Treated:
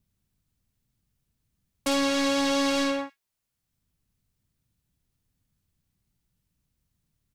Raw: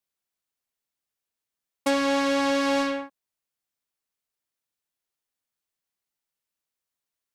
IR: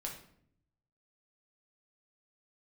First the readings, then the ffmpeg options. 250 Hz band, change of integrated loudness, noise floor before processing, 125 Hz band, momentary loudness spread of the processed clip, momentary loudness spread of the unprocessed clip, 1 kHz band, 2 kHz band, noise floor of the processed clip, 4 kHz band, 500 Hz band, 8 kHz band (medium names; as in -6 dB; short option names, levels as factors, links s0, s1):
-0.5 dB, -0.5 dB, under -85 dBFS, no reading, 9 LU, 10 LU, -3.0 dB, -2.0 dB, -82 dBFS, +3.0 dB, -2.5 dB, +4.5 dB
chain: -filter_complex "[0:a]acrossover=split=180|2300[s0][s1][s2];[s0]acompressor=mode=upward:threshold=0.00158:ratio=2.5[s3];[s1]asoftclip=type=hard:threshold=0.0447[s4];[s2]aecho=1:1:49|78:0.531|0.178[s5];[s3][s4][s5]amix=inputs=3:normalize=0,volume=1.41"